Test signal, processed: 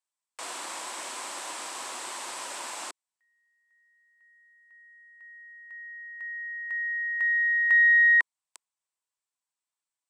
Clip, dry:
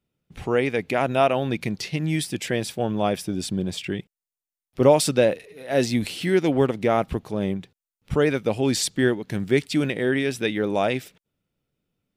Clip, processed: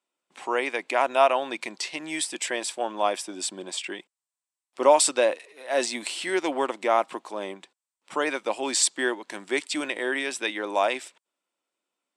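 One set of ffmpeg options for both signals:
ffmpeg -i in.wav -af "aeval=exprs='0.631*(cos(1*acos(clip(val(0)/0.631,-1,1)))-cos(1*PI/2))+0.00708*(cos(4*acos(clip(val(0)/0.631,-1,1)))-cos(4*PI/2))':channel_layout=same,highpass=frequency=360:width=0.5412,highpass=frequency=360:width=1.3066,equalizer=frequency=440:width_type=q:width=4:gain=-10,equalizer=frequency=1000:width_type=q:width=4:gain=8,equalizer=frequency=8000:width_type=q:width=4:gain=9,lowpass=frequency=10000:width=0.5412,lowpass=frequency=10000:width=1.3066" out.wav

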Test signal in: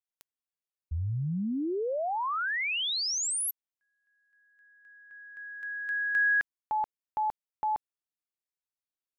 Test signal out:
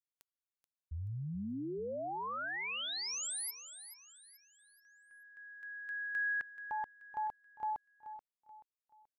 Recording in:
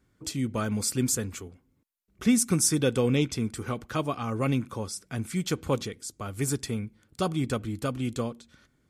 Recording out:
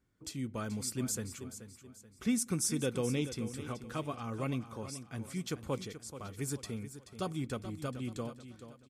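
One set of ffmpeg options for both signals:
ffmpeg -i in.wav -af "aecho=1:1:431|862|1293|1724:0.251|0.0955|0.0363|0.0138,volume=-9dB" out.wav

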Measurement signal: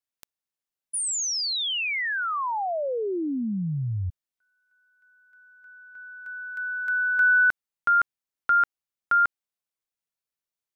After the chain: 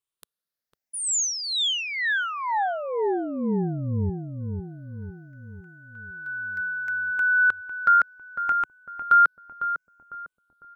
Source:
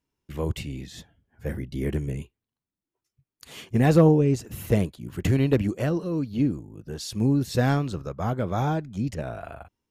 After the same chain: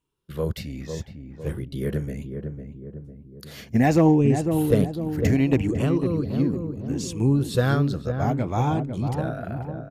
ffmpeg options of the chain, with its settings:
ffmpeg -i in.wav -filter_complex "[0:a]afftfilt=real='re*pow(10,9/40*sin(2*PI*(0.66*log(max(b,1)*sr/1024/100)/log(2)-(0.68)*(pts-256)/sr)))':imag='im*pow(10,9/40*sin(2*PI*(0.66*log(max(b,1)*sr/1024/100)/log(2)-(0.68)*(pts-256)/sr)))':win_size=1024:overlap=0.75,asplit=2[link_01][link_02];[link_02]adelay=502,lowpass=frequency=850:poles=1,volume=-5.5dB,asplit=2[link_03][link_04];[link_04]adelay=502,lowpass=frequency=850:poles=1,volume=0.54,asplit=2[link_05][link_06];[link_06]adelay=502,lowpass=frequency=850:poles=1,volume=0.54,asplit=2[link_07][link_08];[link_08]adelay=502,lowpass=frequency=850:poles=1,volume=0.54,asplit=2[link_09][link_10];[link_10]adelay=502,lowpass=frequency=850:poles=1,volume=0.54,asplit=2[link_11][link_12];[link_12]adelay=502,lowpass=frequency=850:poles=1,volume=0.54,asplit=2[link_13][link_14];[link_14]adelay=502,lowpass=frequency=850:poles=1,volume=0.54[link_15];[link_01][link_03][link_05][link_07][link_09][link_11][link_13][link_15]amix=inputs=8:normalize=0" out.wav

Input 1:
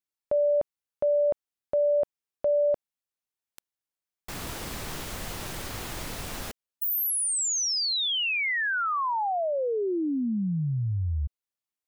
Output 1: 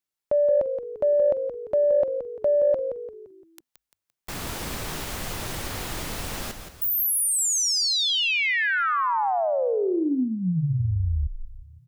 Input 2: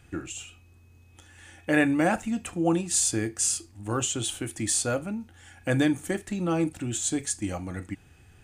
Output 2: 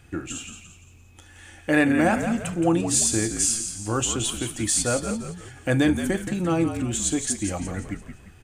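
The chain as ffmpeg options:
ffmpeg -i in.wav -filter_complex "[0:a]asplit=6[link_01][link_02][link_03][link_04][link_05][link_06];[link_02]adelay=172,afreqshift=-51,volume=-8.5dB[link_07];[link_03]adelay=344,afreqshift=-102,volume=-16dB[link_08];[link_04]adelay=516,afreqshift=-153,volume=-23.6dB[link_09];[link_05]adelay=688,afreqshift=-204,volume=-31.1dB[link_10];[link_06]adelay=860,afreqshift=-255,volume=-38.6dB[link_11];[link_01][link_07][link_08][link_09][link_10][link_11]amix=inputs=6:normalize=0,acontrast=56,volume=-3dB" out.wav

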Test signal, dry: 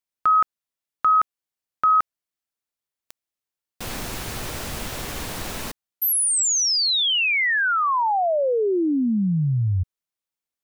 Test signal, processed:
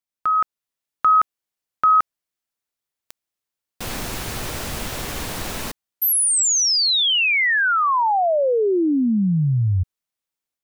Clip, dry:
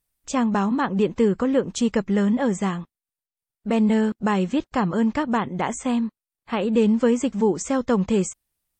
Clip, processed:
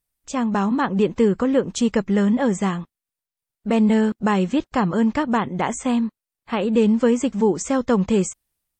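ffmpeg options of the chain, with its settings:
ffmpeg -i in.wav -af "dynaudnorm=framelen=340:gausssize=3:maxgain=5dB,volume=-2.5dB" out.wav

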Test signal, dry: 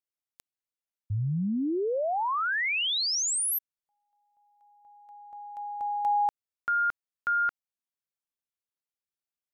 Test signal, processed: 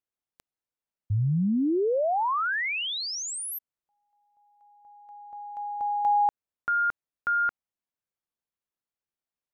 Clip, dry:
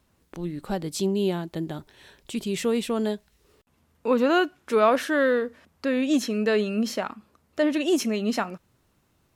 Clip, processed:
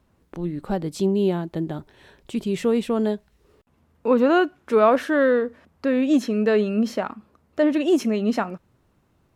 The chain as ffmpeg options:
ffmpeg -i in.wav -af "highshelf=frequency=2300:gain=-10.5,volume=4dB" out.wav

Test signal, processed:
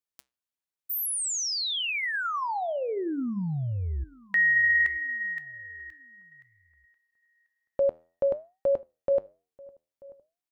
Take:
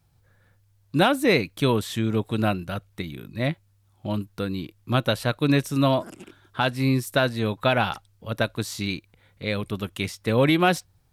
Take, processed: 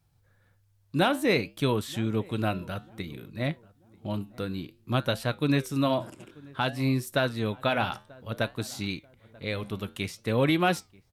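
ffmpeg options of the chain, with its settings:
ffmpeg -i in.wav -filter_complex "[0:a]flanger=delay=6.5:depth=5.9:regen=-82:speed=0.57:shape=sinusoidal,asplit=2[link_01][link_02];[link_02]adelay=937,lowpass=frequency=1200:poles=1,volume=-23dB,asplit=2[link_03][link_04];[link_04]adelay=937,lowpass=frequency=1200:poles=1,volume=0.39,asplit=2[link_05][link_06];[link_06]adelay=937,lowpass=frequency=1200:poles=1,volume=0.39[link_07];[link_01][link_03][link_05][link_07]amix=inputs=4:normalize=0" out.wav

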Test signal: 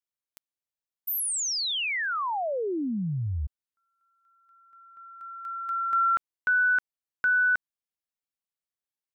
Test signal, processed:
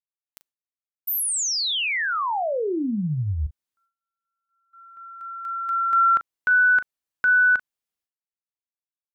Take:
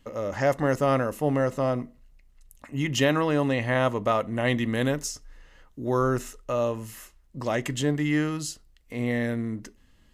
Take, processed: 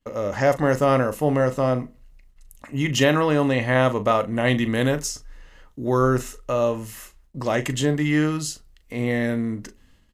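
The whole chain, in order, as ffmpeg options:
ffmpeg -i in.wav -filter_complex "[0:a]agate=range=-25dB:threshold=-52dB:ratio=3:release=267:detection=rms,asplit=2[link_01][link_02];[link_02]adelay=39,volume=-12.5dB[link_03];[link_01][link_03]amix=inputs=2:normalize=0,volume=4dB" out.wav

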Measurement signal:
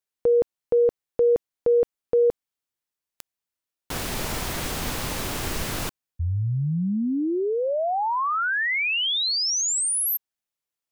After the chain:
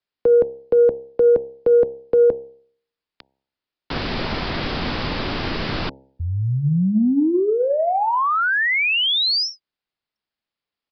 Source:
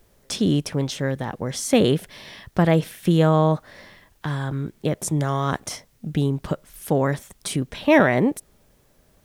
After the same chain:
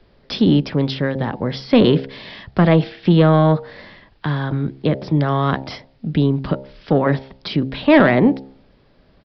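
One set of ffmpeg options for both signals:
ffmpeg -i in.wav -filter_complex "[0:a]equalizer=frequency=250:width_type=o:width=1.2:gain=3,bandreject=frequency=66.79:width_type=h:width=4,bandreject=frequency=133.58:width_type=h:width=4,bandreject=frequency=200.37:width_type=h:width=4,bandreject=frequency=267.16:width_type=h:width=4,bandreject=frequency=333.95:width_type=h:width=4,bandreject=frequency=400.74:width_type=h:width=4,bandreject=frequency=467.53:width_type=h:width=4,bandreject=frequency=534.32:width_type=h:width=4,bandreject=frequency=601.11:width_type=h:width=4,bandreject=frequency=667.9:width_type=h:width=4,bandreject=frequency=734.69:width_type=h:width=4,bandreject=frequency=801.48:width_type=h:width=4,bandreject=frequency=868.27:width_type=h:width=4,bandreject=frequency=935.06:width_type=h:width=4,acrossover=split=120|610|4100[link_01][link_02][link_03][link_04];[link_01]alimiter=level_in=5.5dB:limit=-24dB:level=0:latency=1,volume=-5.5dB[link_05];[link_05][link_02][link_03][link_04]amix=inputs=4:normalize=0,acontrast=54,aresample=11025,aresample=44100,volume=-1dB" out.wav

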